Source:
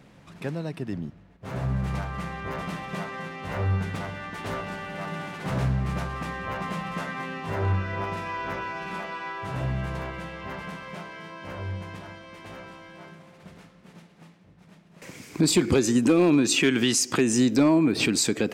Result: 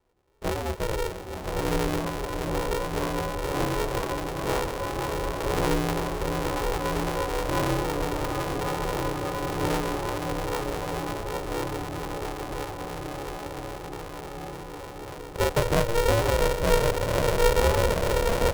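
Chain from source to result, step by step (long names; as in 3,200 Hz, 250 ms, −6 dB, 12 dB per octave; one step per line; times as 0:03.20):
elliptic low-pass filter 890 Hz
tuned comb filter 260 Hz, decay 0.35 s, harmonics odd, mix 70%
tape wow and flutter 23 cents
double-tracking delay 27 ms −2.5 dB
noise gate with hold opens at −45 dBFS
in parallel at −3 dB: brickwall limiter −26 dBFS, peak gain reduction 11.5 dB
on the sum: feedback delay with all-pass diffusion 1,114 ms, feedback 75%, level −7 dB
speech leveller within 3 dB 2 s
feedback delay with all-pass diffusion 762 ms, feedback 70%, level −7 dB
ring modulator with a square carrier 230 Hz
level +3.5 dB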